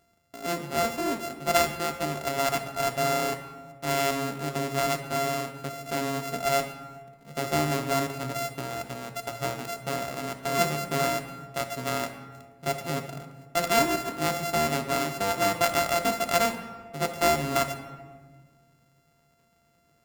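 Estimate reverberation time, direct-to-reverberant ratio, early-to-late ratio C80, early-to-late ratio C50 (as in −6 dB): 1.5 s, 5.5 dB, 11.0 dB, 9.0 dB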